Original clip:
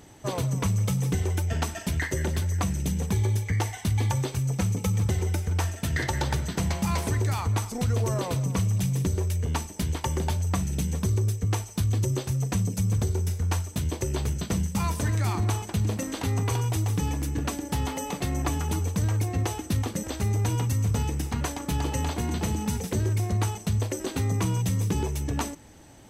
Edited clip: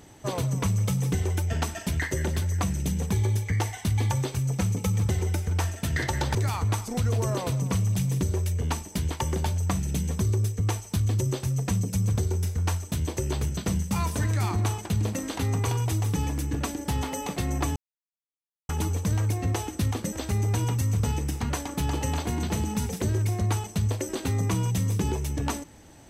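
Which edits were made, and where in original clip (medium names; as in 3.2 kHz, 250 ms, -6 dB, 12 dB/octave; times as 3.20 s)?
6.35–7.19 s: delete
18.60 s: insert silence 0.93 s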